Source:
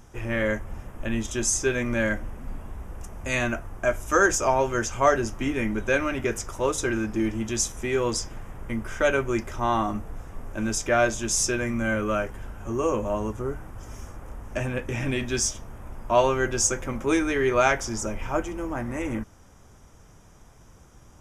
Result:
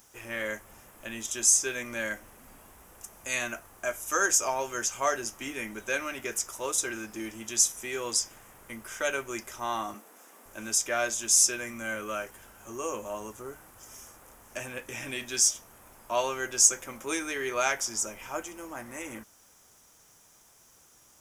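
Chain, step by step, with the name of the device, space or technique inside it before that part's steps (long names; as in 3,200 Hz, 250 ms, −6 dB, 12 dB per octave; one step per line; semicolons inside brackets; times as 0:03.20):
turntable without a phono preamp (RIAA equalisation recording; white noise bed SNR 36 dB)
0:09.94–0:10.46: Butterworth high-pass 210 Hz 36 dB per octave
level −7 dB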